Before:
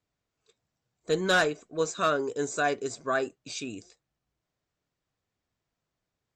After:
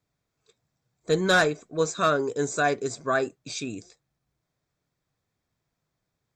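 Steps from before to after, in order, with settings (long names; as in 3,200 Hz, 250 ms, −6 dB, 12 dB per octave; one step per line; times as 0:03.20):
parametric band 140 Hz +5 dB 0.75 octaves
notch filter 2,900 Hz, Q 8.4
level +3 dB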